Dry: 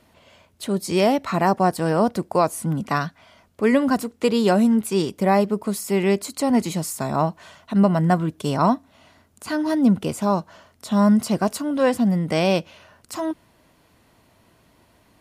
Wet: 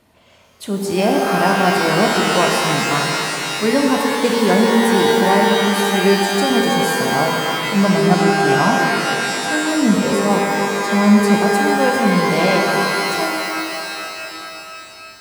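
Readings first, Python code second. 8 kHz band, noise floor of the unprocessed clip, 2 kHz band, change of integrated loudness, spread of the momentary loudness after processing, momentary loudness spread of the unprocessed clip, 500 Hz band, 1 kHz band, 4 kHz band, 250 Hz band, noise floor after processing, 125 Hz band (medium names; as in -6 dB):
+9.0 dB, -59 dBFS, +14.5 dB, +5.5 dB, 10 LU, 9 LU, +6.0 dB, +7.5 dB, +13.5 dB, +3.5 dB, -39 dBFS, +3.0 dB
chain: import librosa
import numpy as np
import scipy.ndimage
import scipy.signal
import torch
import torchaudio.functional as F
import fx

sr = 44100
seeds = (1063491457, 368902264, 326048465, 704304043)

y = fx.rev_shimmer(x, sr, seeds[0], rt60_s=3.3, semitones=12, shimmer_db=-2, drr_db=0.5)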